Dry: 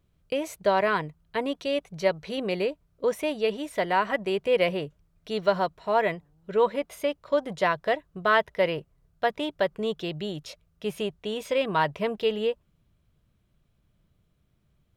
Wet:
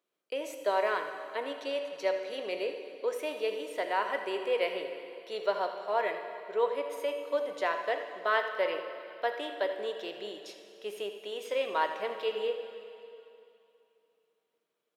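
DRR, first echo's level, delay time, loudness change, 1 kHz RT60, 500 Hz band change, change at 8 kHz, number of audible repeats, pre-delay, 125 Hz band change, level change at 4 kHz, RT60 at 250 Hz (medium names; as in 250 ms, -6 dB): 5.0 dB, -12.5 dB, 82 ms, -6.0 dB, 2.8 s, -5.5 dB, no reading, 1, 7 ms, under -25 dB, -5.5 dB, 2.8 s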